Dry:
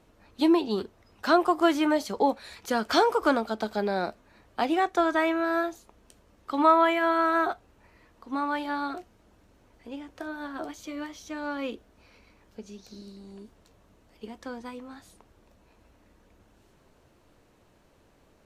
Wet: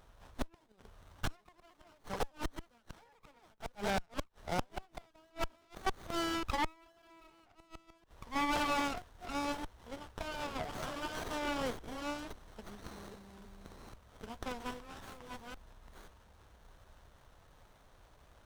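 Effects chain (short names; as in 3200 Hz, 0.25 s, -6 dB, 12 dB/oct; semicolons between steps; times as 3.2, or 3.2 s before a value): reverse delay 0.536 s, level -3 dB; passive tone stack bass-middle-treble 10-0-10; in parallel at -11 dB: wrapped overs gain 32.5 dB; on the sum: flipped gate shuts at -28 dBFS, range -36 dB; running maximum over 17 samples; gain +8 dB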